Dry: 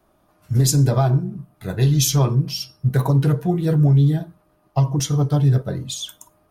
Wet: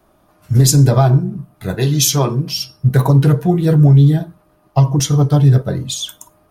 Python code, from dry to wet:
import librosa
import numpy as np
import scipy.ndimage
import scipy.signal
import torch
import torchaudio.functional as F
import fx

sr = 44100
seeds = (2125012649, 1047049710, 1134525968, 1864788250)

y = fx.highpass(x, sr, hz=180.0, slope=12, at=(1.75, 2.57))
y = y * 10.0 ** (6.0 / 20.0)